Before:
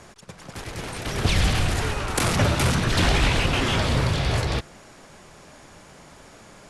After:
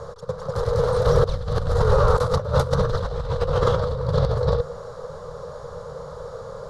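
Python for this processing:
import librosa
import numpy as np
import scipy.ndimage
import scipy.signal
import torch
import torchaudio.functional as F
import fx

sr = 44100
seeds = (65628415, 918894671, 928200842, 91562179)

y = fx.curve_eq(x, sr, hz=(150.0, 320.0, 480.0, 700.0, 1200.0, 2500.0, 3900.0, 8800.0), db=(0, -28, 14, -7, 1, -29, -9, -20))
y = fx.over_compress(y, sr, threshold_db=-26.0, ratio=-0.5)
y = y * 10.0 ** (7.0 / 20.0)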